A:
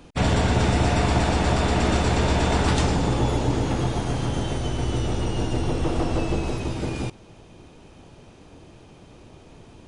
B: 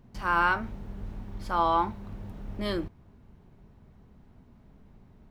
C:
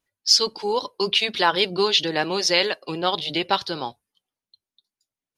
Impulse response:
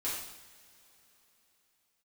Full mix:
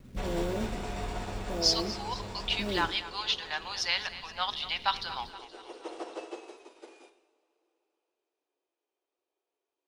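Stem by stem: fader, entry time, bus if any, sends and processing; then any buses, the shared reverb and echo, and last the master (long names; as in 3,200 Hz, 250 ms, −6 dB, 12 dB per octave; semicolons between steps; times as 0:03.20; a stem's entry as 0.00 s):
−12.5 dB, 0.00 s, send −9.5 dB, no echo send, Butterworth high-pass 330 Hz 48 dB per octave; expander for the loud parts 2.5 to 1, over −44 dBFS; automatic ducking −7 dB, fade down 0.25 s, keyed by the second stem
−3.0 dB, 0.00 s, send −8.5 dB, no echo send, Butterworth low-pass 630 Hz 72 dB per octave; log-companded quantiser 6 bits
−7.5 dB, 1.35 s, send −19.5 dB, echo send −14.5 dB, high-pass filter 850 Hz 24 dB per octave; high-shelf EQ 6,700 Hz −9.5 dB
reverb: on, pre-delay 3 ms
echo: repeating echo 237 ms, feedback 53%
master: speech leveller within 5 dB 2 s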